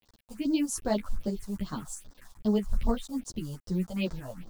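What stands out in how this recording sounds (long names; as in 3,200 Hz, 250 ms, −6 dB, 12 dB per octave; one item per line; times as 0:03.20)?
a quantiser's noise floor 8 bits, dither none
phaser sweep stages 4, 2.5 Hz, lowest notch 320–2,600 Hz
tremolo saw up 3.1 Hz, depth 35%
a shimmering, thickened sound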